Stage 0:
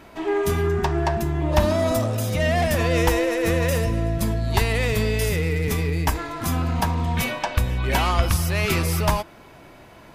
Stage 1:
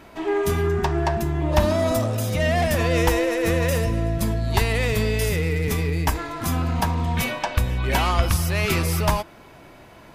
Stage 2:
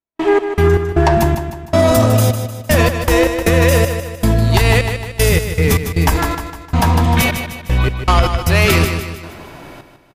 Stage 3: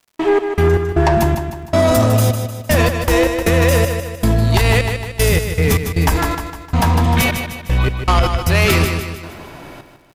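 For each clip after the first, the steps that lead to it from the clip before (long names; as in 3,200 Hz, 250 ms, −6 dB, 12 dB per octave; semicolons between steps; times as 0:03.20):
no processing that can be heard
gate pattern ".x.x.xx..xxx." 78 BPM −60 dB; repeating echo 153 ms, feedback 46%, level −9 dB; boost into a limiter +11.5 dB; level −1 dB
surface crackle 130 per second −42 dBFS; soft clipping −4.5 dBFS, distortion −20 dB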